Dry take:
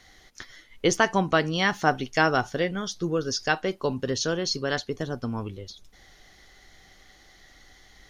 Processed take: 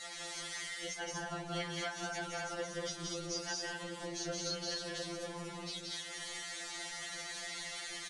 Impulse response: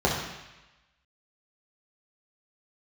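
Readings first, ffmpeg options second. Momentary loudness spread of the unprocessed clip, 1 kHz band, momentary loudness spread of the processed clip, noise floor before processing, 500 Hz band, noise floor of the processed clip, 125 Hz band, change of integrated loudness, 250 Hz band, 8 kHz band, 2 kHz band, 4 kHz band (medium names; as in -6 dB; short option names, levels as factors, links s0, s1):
17 LU, -16.5 dB, 4 LU, -56 dBFS, -15.0 dB, -46 dBFS, -15.5 dB, -14.0 dB, -16.0 dB, -5.0 dB, -13.0 dB, -7.0 dB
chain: -filter_complex "[0:a]aeval=exprs='val(0)+0.5*0.0398*sgn(val(0))':c=same,highpass=f=170:p=1,asplit=2[s0][s1];[1:a]atrim=start_sample=2205[s2];[s1][s2]afir=irnorm=-1:irlink=0,volume=0.0562[s3];[s0][s3]amix=inputs=2:normalize=0,aresample=22050,aresample=44100,lowshelf=f=390:g=-10,bandreject=f=5200:w=25,afftfilt=real='hypot(re,im)*cos(2*PI*random(0))':imag='hypot(re,im)*sin(2*PI*random(1))':win_size=512:overlap=0.75,acompressor=threshold=0.0224:ratio=8,flanger=delay=4.2:depth=3.1:regen=48:speed=1.1:shape=sinusoidal,aecho=1:1:174.9|236.2:0.794|0.794,adynamicequalizer=threshold=0.002:dfrequency=1000:dqfactor=1.2:tfrequency=1000:tqfactor=1.2:attack=5:release=100:ratio=0.375:range=2.5:mode=cutabove:tftype=bell,afftfilt=real='re*2.83*eq(mod(b,8),0)':imag='im*2.83*eq(mod(b,8),0)':win_size=2048:overlap=0.75,volume=1.26"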